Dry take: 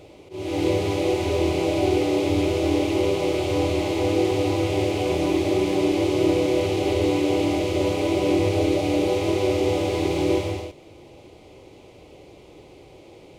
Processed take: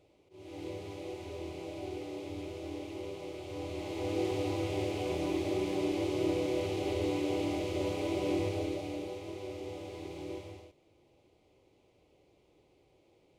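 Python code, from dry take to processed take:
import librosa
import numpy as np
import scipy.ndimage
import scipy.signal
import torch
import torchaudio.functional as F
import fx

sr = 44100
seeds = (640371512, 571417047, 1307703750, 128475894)

y = fx.gain(x, sr, db=fx.line((3.43, -19.5), (4.23, -11.0), (8.39, -11.0), (9.23, -20.0)))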